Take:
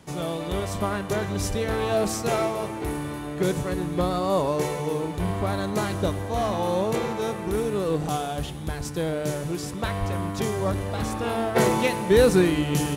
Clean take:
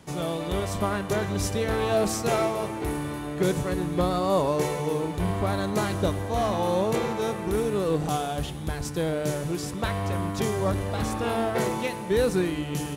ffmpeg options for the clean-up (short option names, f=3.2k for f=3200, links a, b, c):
-filter_complex "[0:a]asplit=3[a][b][c];[a]afade=t=out:st=1.48:d=0.02[d];[b]highpass=f=140:w=0.5412,highpass=f=140:w=1.3066,afade=t=in:st=1.48:d=0.02,afade=t=out:st=1.6:d=0.02[e];[c]afade=t=in:st=1.6:d=0.02[f];[d][e][f]amix=inputs=3:normalize=0,asplit=3[g][h][i];[g]afade=t=out:st=9.99:d=0.02[j];[h]highpass=f=140:w=0.5412,highpass=f=140:w=1.3066,afade=t=in:st=9.99:d=0.02,afade=t=out:st=10.11:d=0.02[k];[i]afade=t=in:st=10.11:d=0.02[l];[j][k][l]amix=inputs=3:normalize=0,asetnsamples=n=441:p=0,asendcmd='11.56 volume volume -6dB',volume=0dB"